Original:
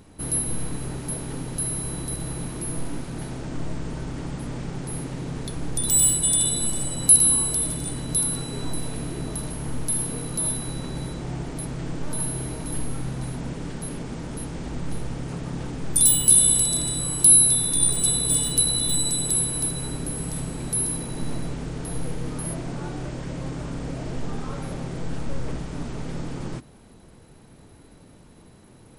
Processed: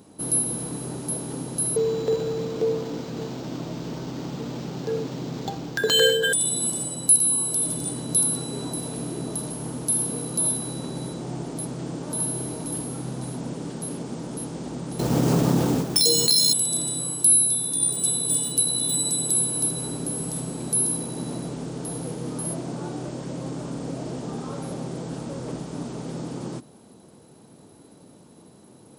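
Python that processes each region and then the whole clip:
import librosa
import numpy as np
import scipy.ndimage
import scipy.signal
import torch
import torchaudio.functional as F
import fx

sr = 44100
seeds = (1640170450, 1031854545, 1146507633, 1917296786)

y = fx.chain(x, sr, fx.high_shelf(hz=3900.0, db=10.0),
    fx.resample_linear(factor=4), at=(1.76, 6.33))
y = fx.chain(y, sr, fx.resample_bad(factor=3, down='none', up='hold'),
    fx.peak_eq(hz=12000.0, db=-2.0, octaves=0.34),
    fx.env_flatten(amount_pct=70), at=(14.99, 16.53))
y = scipy.signal.sosfilt(scipy.signal.butter(2, 170.0, 'highpass', fs=sr, output='sos'), y)
y = fx.peak_eq(y, sr, hz=2000.0, db=-9.5, octaves=1.4)
y = fx.rider(y, sr, range_db=3, speed_s=0.5)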